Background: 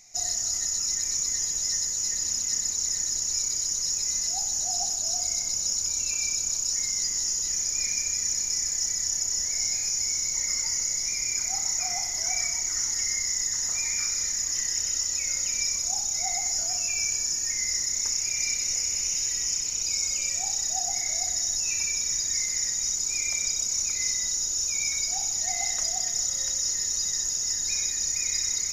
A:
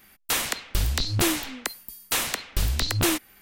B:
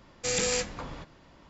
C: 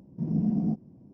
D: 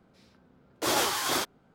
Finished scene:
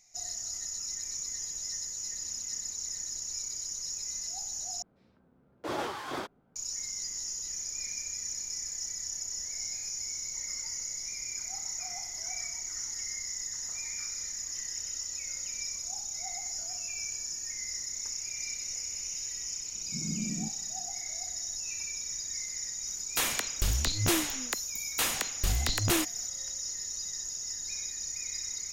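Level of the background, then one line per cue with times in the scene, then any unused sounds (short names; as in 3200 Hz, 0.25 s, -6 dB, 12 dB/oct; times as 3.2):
background -9.5 dB
4.82 replace with D -4.5 dB + LPF 1300 Hz 6 dB/oct
19.74 add C -9.5 dB + formant sharpening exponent 1.5
22.87 add A -4.5 dB
not used: B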